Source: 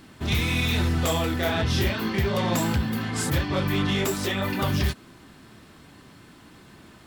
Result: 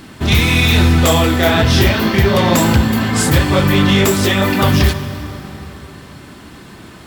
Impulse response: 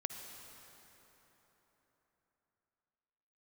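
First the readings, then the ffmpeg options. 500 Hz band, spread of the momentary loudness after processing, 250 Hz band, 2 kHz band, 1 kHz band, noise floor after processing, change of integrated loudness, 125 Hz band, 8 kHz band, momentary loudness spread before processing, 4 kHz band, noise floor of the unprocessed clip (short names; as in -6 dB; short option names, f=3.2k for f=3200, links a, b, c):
+12.0 dB, 13 LU, +12.5 dB, +12.0 dB, +12.0 dB, -38 dBFS, +12.0 dB, +12.0 dB, +12.0 dB, 3 LU, +12.0 dB, -50 dBFS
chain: -filter_complex "[0:a]asplit=2[a][b];[1:a]atrim=start_sample=2205[c];[b][c]afir=irnorm=-1:irlink=0,volume=1dB[d];[a][d]amix=inputs=2:normalize=0,volume=6dB"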